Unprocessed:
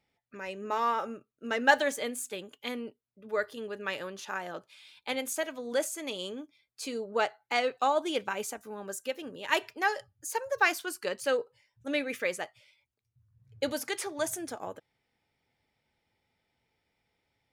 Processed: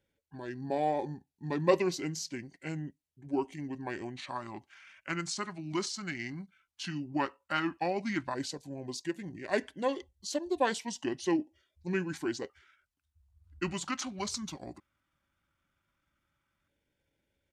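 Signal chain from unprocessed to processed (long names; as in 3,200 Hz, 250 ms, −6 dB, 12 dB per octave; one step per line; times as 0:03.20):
auto-filter notch square 0.12 Hz 710–1,900 Hz
pitch shifter −7.5 semitones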